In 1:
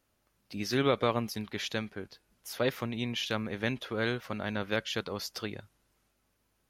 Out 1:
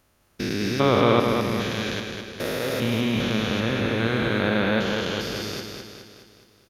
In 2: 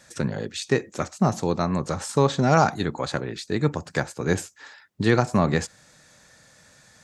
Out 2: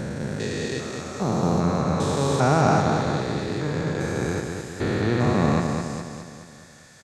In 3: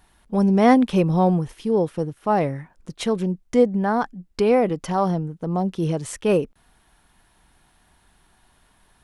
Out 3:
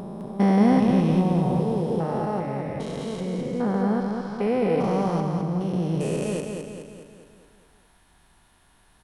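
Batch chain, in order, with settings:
spectrum averaged block by block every 400 ms
repeating echo 209 ms, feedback 53%, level −5 dB
loudness normalisation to −24 LKFS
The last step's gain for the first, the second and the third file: +12.0, +3.5, 0.0 decibels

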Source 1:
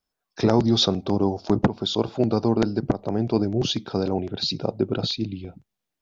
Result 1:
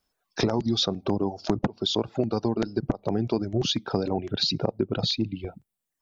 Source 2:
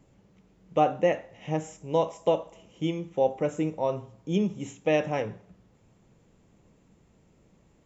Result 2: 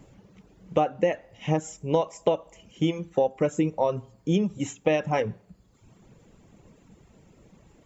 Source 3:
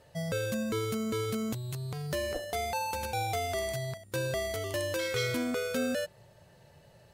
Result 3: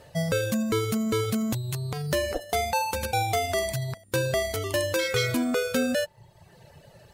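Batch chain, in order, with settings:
reverb reduction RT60 0.86 s
downward compressor 6 to 1, threshold −28 dBFS
loudness normalisation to −27 LKFS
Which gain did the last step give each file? +6.5, +8.5, +8.5 decibels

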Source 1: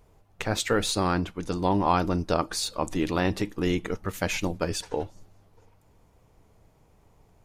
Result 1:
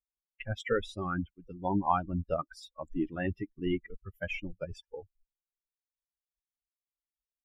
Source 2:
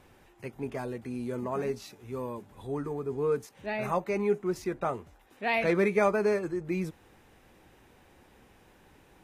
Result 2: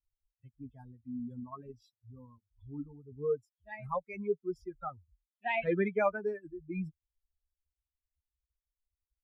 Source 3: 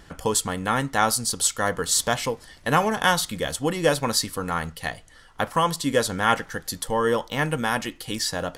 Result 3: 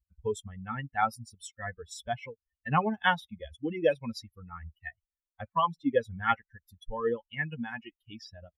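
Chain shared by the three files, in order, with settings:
spectral dynamics exaggerated over time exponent 3
Savitzky-Golay smoothing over 25 samples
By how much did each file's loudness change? −7.0, −5.0, −8.0 LU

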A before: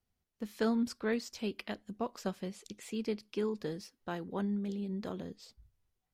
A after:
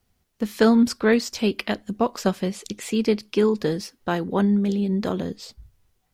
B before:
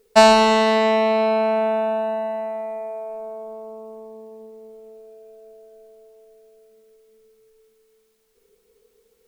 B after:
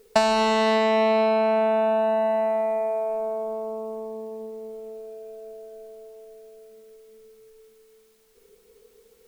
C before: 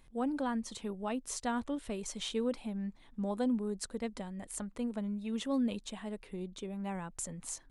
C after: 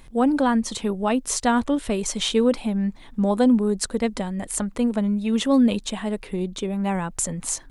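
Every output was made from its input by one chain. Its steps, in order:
downward compressor 8 to 1, threshold −23 dBFS
loudness normalisation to −23 LKFS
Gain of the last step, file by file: +14.5, +5.0, +14.0 decibels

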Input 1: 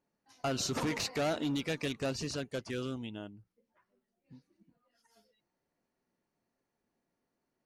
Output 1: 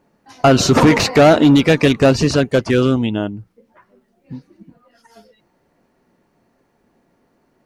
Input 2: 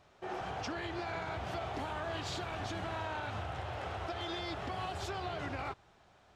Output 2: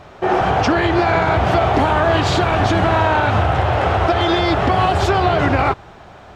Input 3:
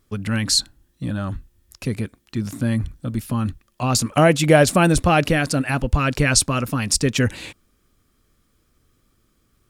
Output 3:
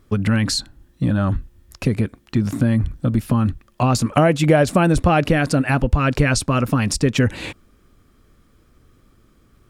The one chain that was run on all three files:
downward compressor 2.5 to 1, threshold −25 dBFS
high-shelf EQ 3,000 Hz −10 dB
normalise the peak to −1.5 dBFS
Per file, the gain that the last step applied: +23.5, +24.5, +9.5 decibels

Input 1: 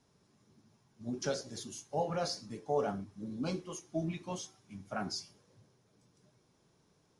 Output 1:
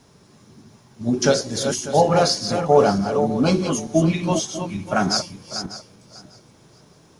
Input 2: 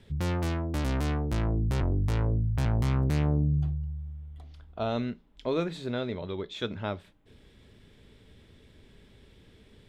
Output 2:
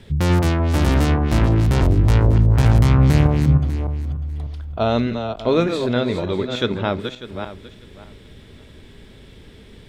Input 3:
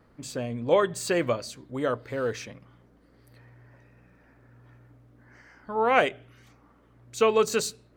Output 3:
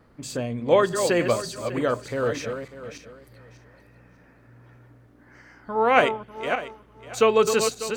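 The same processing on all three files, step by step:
feedback delay that plays each chunk backwards 298 ms, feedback 42%, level −7 dB
normalise the peak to −3 dBFS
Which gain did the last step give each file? +17.5, +11.0, +3.0 decibels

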